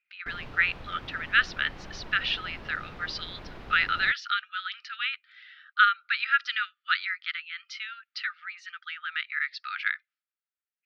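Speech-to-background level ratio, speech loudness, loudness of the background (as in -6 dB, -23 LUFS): 17.0 dB, -28.5 LUFS, -45.5 LUFS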